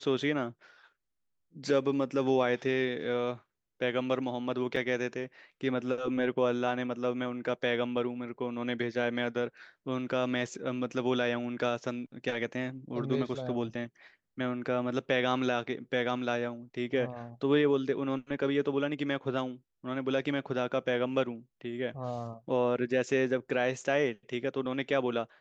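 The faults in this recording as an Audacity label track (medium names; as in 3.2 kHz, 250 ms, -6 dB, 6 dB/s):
4.760000	4.760000	dropout 3.2 ms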